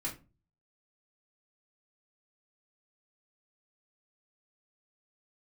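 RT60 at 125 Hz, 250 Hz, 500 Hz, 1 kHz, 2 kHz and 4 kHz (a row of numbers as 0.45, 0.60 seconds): 0.60, 0.45, 0.35, 0.30, 0.25, 0.20 seconds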